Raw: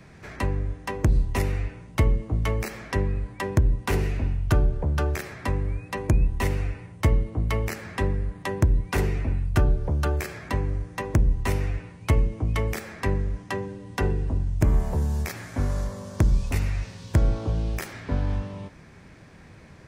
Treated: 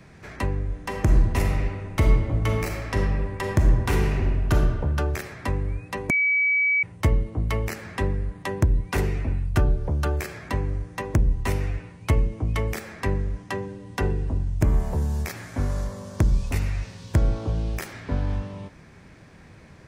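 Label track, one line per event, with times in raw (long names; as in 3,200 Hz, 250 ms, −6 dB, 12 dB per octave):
0.670000	4.530000	thrown reverb, RT60 1.6 s, DRR 1.5 dB
6.100000	6.830000	beep over 2,280 Hz −18 dBFS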